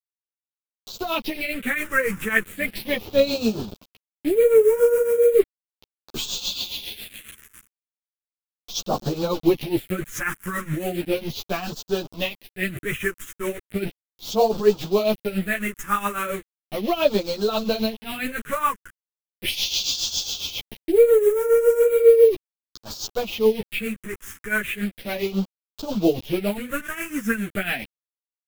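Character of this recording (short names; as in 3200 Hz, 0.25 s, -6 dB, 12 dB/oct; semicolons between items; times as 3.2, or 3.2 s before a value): a quantiser's noise floor 6-bit, dither none; phasing stages 4, 0.36 Hz, lowest notch 690–2000 Hz; tremolo triangle 7.3 Hz, depth 80%; a shimmering, thickened sound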